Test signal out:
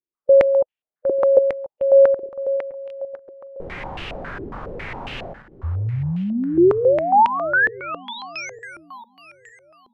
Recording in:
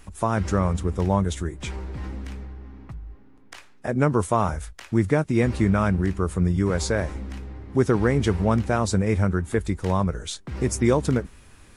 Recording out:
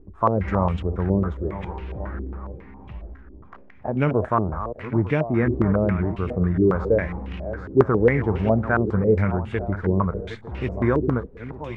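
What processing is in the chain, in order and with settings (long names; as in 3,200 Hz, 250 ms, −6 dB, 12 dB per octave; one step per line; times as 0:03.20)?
feedback delay that plays each chunk backwards 452 ms, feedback 52%, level −12 dB
harmonic and percussive parts rebalanced percussive −5 dB
low-pass on a step sequencer 7.3 Hz 370–2,800 Hz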